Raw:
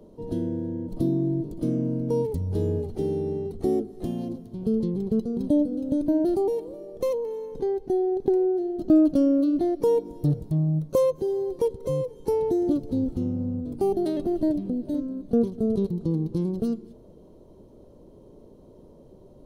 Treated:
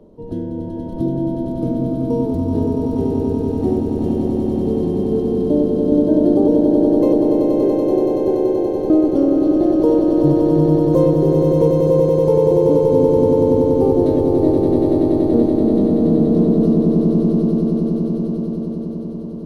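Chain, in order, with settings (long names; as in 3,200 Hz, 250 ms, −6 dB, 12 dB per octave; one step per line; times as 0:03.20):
high-shelf EQ 3,600 Hz −10.5 dB
echo that builds up and dies away 95 ms, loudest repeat 8, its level −4.5 dB
level +3.5 dB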